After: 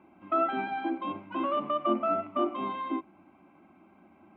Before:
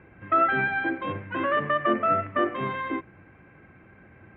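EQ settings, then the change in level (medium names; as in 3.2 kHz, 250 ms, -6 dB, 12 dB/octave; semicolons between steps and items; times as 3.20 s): high-pass 160 Hz 12 dB/octave; static phaser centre 470 Hz, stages 6; 0.0 dB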